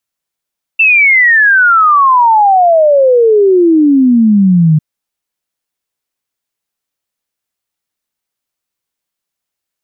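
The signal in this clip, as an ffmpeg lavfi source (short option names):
-f lavfi -i "aevalsrc='0.631*clip(min(t,4-t)/0.01,0,1)*sin(2*PI*2700*4/log(150/2700)*(exp(log(150/2700)*t/4)-1))':d=4:s=44100"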